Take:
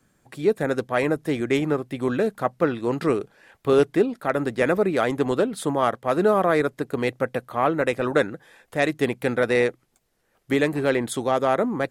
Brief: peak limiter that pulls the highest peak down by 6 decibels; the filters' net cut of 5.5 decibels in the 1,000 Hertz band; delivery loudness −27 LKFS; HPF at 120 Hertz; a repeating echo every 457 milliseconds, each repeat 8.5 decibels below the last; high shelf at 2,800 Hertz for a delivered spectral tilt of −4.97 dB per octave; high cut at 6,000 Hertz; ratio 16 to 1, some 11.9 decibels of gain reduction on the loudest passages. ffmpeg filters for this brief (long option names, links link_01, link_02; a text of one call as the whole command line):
ffmpeg -i in.wav -af "highpass=120,lowpass=6000,equalizer=frequency=1000:width_type=o:gain=-8.5,highshelf=frequency=2800:gain=3,acompressor=threshold=-27dB:ratio=16,alimiter=limit=-22dB:level=0:latency=1,aecho=1:1:457|914|1371|1828:0.376|0.143|0.0543|0.0206,volume=7dB" out.wav